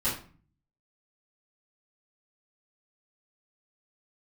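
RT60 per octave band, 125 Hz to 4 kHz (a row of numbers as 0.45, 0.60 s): 0.80, 0.65, 0.40, 0.40, 0.40, 0.30 s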